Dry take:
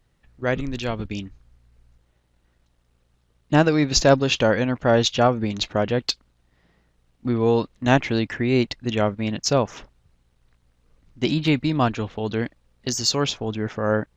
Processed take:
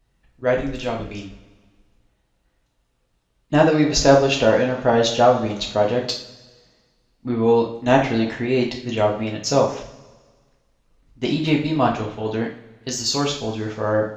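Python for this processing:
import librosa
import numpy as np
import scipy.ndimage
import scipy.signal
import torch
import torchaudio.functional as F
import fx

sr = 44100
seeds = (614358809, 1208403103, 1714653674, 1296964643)

y = fx.rev_double_slope(x, sr, seeds[0], early_s=0.41, late_s=1.6, knee_db=-16, drr_db=-1.0)
y = fx.dynamic_eq(y, sr, hz=580.0, q=0.76, threshold_db=-28.0, ratio=4.0, max_db=5)
y = y * 10.0 ** (-4.0 / 20.0)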